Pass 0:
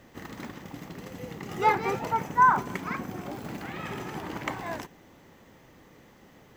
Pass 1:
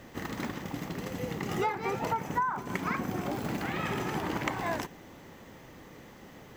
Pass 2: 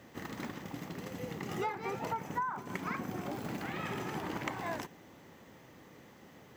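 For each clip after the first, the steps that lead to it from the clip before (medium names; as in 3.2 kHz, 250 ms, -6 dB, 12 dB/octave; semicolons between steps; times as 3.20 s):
compression 20:1, threshold -31 dBFS, peak gain reduction 17.5 dB; trim +4.5 dB
high-pass 76 Hz; trim -5.5 dB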